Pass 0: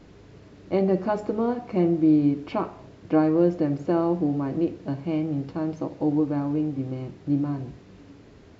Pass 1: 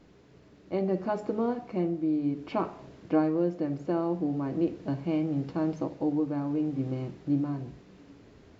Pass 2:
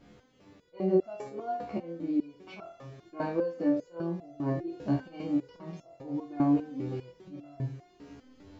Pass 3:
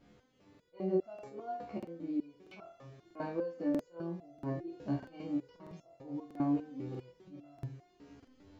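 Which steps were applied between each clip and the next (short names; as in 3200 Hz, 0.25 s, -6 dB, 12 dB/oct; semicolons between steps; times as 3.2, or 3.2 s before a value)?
vocal rider within 5 dB 0.5 s; notches 50/100/150 Hz; gain -5 dB
flutter echo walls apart 4.1 m, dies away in 0.36 s; auto swell 0.124 s; stepped resonator 5 Hz 71–680 Hz; gain +8.5 dB
crackling interface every 0.64 s, samples 2048, repeat, from 0.5; gain -6.5 dB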